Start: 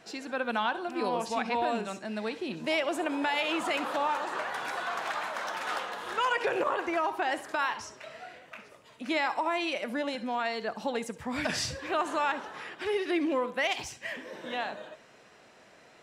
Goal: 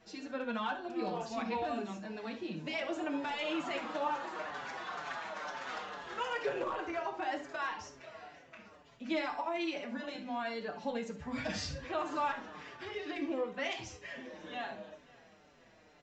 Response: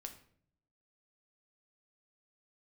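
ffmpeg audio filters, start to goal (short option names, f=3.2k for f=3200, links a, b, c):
-filter_complex "[0:a]lowshelf=f=170:g=10.5,aresample=16000,volume=19.5dB,asoftclip=hard,volume=-19.5dB,aresample=44100,aecho=1:1:533|1066|1599:0.0794|0.0389|0.0191[a];[1:a]atrim=start_sample=2205,afade=t=out:st=0.14:d=0.01,atrim=end_sample=6615[b];[a][b]afir=irnorm=-1:irlink=0,asplit=2[c][d];[d]adelay=5.7,afreqshift=-2.1[e];[c][e]amix=inputs=2:normalize=1"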